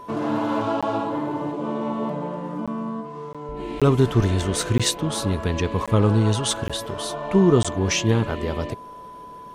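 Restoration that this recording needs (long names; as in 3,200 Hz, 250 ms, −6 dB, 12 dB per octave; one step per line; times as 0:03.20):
notch filter 1,000 Hz, Q 30
repair the gap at 0:00.81/0:02.66/0:03.33/0:03.80/0:04.78/0:05.86/0:06.68/0:07.63, 16 ms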